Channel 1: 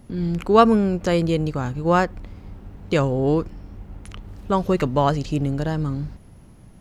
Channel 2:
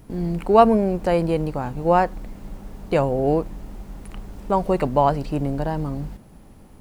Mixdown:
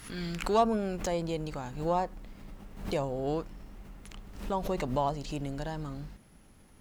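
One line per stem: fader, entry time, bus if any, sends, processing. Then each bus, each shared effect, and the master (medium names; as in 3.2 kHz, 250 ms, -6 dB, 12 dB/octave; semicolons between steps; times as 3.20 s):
-2.0 dB, 0.00 s, no send, inverse Chebyshev high-pass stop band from 620 Hz, stop band 40 dB; compression 2.5:1, threshold -37 dBFS, peak gain reduction 13 dB; sine folder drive 6 dB, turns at -19.5 dBFS; auto duck -12 dB, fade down 1.30 s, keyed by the second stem
-12.0 dB, 0.00 s, no send, none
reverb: none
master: swell ahead of each attack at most 90 dB/s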